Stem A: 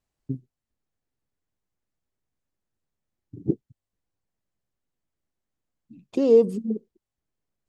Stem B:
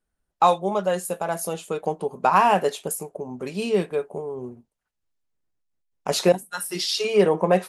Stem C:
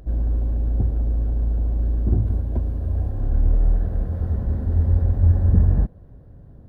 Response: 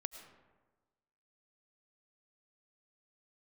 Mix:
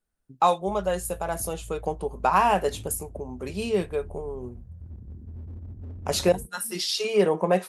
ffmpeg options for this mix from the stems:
-filter_complex "[0:a]volume=0.112[s0];[1:a]volume=0.708,asplit=2[s1][s2];[2:a]afwtdn=0.0891,highpass=66,volume=10.6,asoftclip=hard,volume=0.0944,adelay=600,volume=0.168[s3];[s2]apad=whole_len=338889[s4];[s0][s4]sidechaincompress=threshold=0.0355:ratio=8:attack=16:release=412[s5];[s5][s1][s3]amix=inputs=3:normalize=0,highshelf=f=8100:g=4"

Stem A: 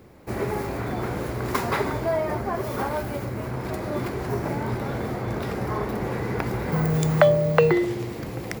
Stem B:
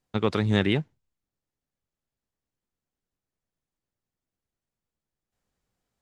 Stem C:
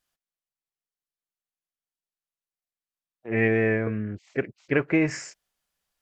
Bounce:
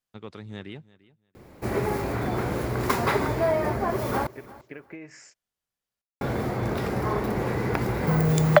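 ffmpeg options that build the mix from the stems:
-filter_complex "[0:a]adelay=1350,volume=1.12,asplit=3[s0][s1][s2];[s0]atrim=end=4.27,asetpts=PTS-STARTPTS,afade=t=out:st=4.266:d=0.004:c=hsin[s3];[s1]atrim=start=4.27:end=6.21,asetpts=PTS-STARTPTS,volume=0[s4];[s2]atrim=start=6.21,asetpts=PTS-STARTPTS,afade=t=in:d=0.004:c=hsin[s5];[s3][s4][s5]concat=n=3:v=0:a=1,asplit=2[s6][s7];[s7]volume=0.1[s8];[1:a]volume=0.158,asplit=2[s9][s10];[s10]volume=0.1[s11];[2:a]acompressor=threshold=0.0398:ratio=10,highpass=160,volume=0.335[s12];[s8][s11]amix=inputs=2:normalize=0,aecho=0:1:344|688|1032:1|0.18|0.0324[s13];[s6][s9][s12][s13]amix=inputs=4:normalize=0"

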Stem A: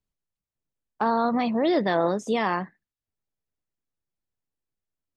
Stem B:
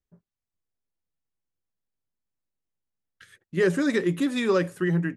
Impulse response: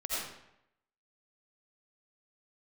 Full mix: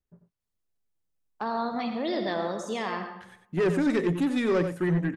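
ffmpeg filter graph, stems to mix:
-filter_complex "[0:a]highshelf=f=3300:g=9,adelay=400,volume=0.299,asplit=2[s0][s1];[s1]volume=0.447[s2];[1:a]highshelf=f=2300:g=-7,asoftclip=type=tanh:threshold=0.0891,volume=1.19,asplit=2[s3][s4];[s4]volume=0.355[s5];[2:a]atrim=start_sample=2205[s6];[s2][s6]afir=irnorm=-1:irlink=0[s7];[s5]aecho=0:1:92:1[s8];[s0][s3][s7][s8]amix=inputs=4:normalize=0"

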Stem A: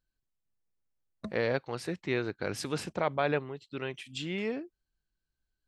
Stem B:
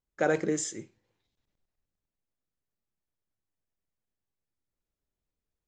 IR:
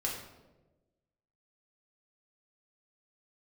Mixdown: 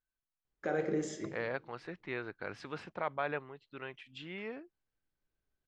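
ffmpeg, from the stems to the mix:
-filter_complex "[0:a]equalizer=f=1300:t=o:w=2.3:g=9,volume=0.251[s0];[1:a]alimiter=limit=0.0631:level=0:latency=1:release=310,adelay=450,volume=0.562,asplit=2[s1][s2];[s2]volume=0.708[s3];[2:a]atrim=start_sample=2205[s4];[s3][s4]afir=irnorm=-1:irlink=0[s5];[s0][s1][s5]amix=inputs=3:normalize=0,lowpass=4000"

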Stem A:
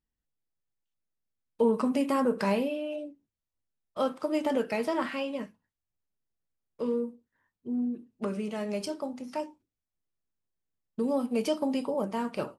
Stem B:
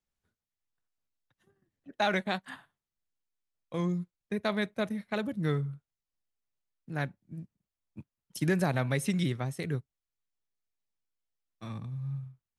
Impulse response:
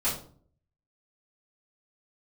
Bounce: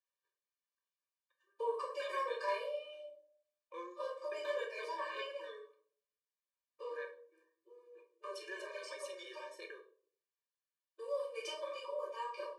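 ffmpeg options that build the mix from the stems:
-filter_complex "[0:a]volume=0.376,asplit=2[s0][s1];[s1]volume=0.631[s2];[1:a]highshelf=f=3100:g=-7,alimiter=level_in=1.41:limit=0.0631:level=0:latency=1:release=26,volume=0.708,volume=0.708,asplit=3[s3][s4][s5];[s4]volume=0.398[s6];[s5]apad=whole_len=554895[s7];[s0][s7]sidechaincompress=threshold=0.00178:ratio=16:attack=7:release=934[s8];[2:a]atrim=start_sample=2205[s9];[s2][s6]amix=inputs=2:normalize=0[s10];[s10][s9]afir=irnorm=-1:irlink=0[s11];[s8][s3][s11]amix=inputs=3:normalize=0,highpass=790,lowpass=7500,afftfilt=real='re*eq(mod(floor(b*sr/1024/310),2),1)':imag='im*eq(mod(floor(b*sr/1024/310),2),1)':win_size=1024:overlap=0.75"

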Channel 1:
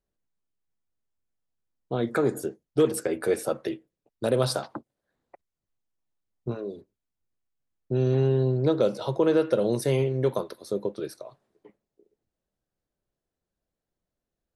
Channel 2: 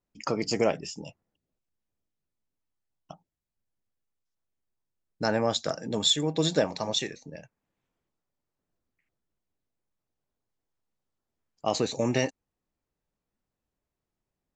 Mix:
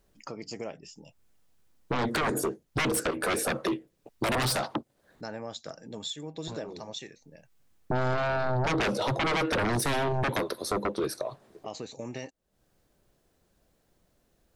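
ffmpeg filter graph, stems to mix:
-filter_complex "[0:a]aeval=exprs='0.316*sin(PI/2*6.31*val(0)/0.316)':c=same,volume=0.708[s0];[1:a]volume=0.316,asplit=2[s1][s2];[s2]apad=whole_len=642074[s3];[s0][s3]sidechaincompress=threshold=0.00251:ratio=10:attack=5.9:release=255[s4];[s4][s1]amix=inputs=2:normalize=0,acompressor=threshold=0.0178:ratio=2"

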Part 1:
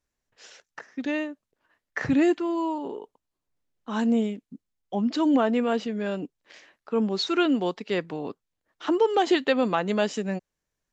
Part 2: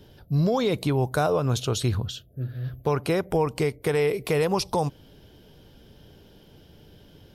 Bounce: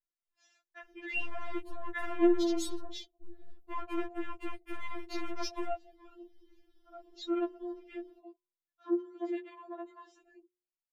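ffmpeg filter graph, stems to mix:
-filter_complex "[0:a]alimiter=limit=0.126:level=0:latency=1:release=14,bandreject=f=59.68:t=h:w=4,bandreject=f=119.36:t=h:w=4,bandreject=f=179.04:t=h:w=4,bandreject=f=238.72:t=h:w=4,bandreject=f=298.4:t=h:w=4,bandreject=f=358.08:t=h:w=4,bandreject=f=417.76:t=h:w=4,bandreject=f=477.44:t=h:w=4,bandreject=f=537.12:t=h:w=4,bandreject=f=596.8:t=h:w=4,bandreject=f=656.48:t=h:w=4,bandreject=f=716.16:t=h:w=4,bandreject=f=775.84:t=h:w=4,bandreject=f=835.52:t=h:w=4,bandreject=f=895.2:t=h:w=4,bandreject=f=954.88:t=h:w=4,bandreject=f=1014.56:t=h:w=4,volume=0.841,afade=t=out:st=1.94:d=0.51:silence=0.316228[s0];[1:a]aeval=exprs='(tanh(31.6*val(0)+0.4)-tanh(0.4))/31.6':c=same,adelay=850,volume=0.841[s1];[s0][s1]amix=inputs=2:normalize=0,afwtdn=0.00562,afftfilt=real='re*4*eq(mod(b,16),0)':imag='im*4*eq(mod(b,16),0)':win_size=2048:overlap=0.75"

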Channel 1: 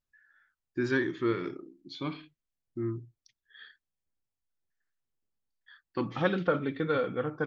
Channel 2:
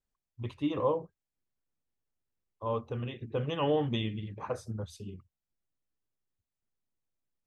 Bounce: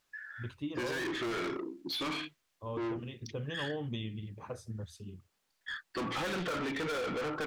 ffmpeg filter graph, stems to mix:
-filter_complex "[0:a]asplit=2[s0][s1];[s1]highpass=f=720:p=1,volume=70.8,asoftclip=type=tanh:threshold=0.224[s2];[s0][s2]amix=inputs=2:normalize=0,lowpass=f=5400:p=1,volume=0.501,volume=0.251[s3];[1:a]equalizer=f=880:w=0.52:g=-6,volume=0.75[s4];[s3][s4]amix=inputs=2:normalize=0,acompressor=threshold=0.02:ratio=3"

